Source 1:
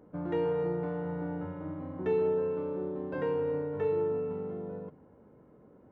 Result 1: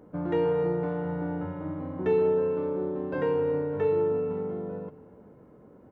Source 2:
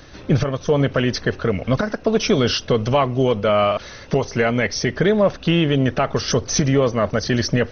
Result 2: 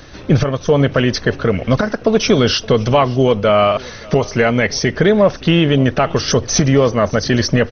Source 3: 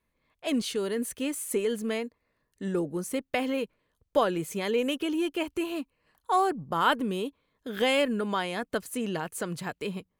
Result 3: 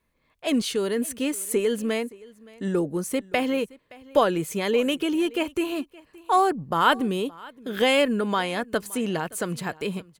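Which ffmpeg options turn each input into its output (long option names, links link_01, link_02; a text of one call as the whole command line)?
ffmpeg -i in.wav -af "aecho=1:1:570:0.075,volume=4.5dB" out.wav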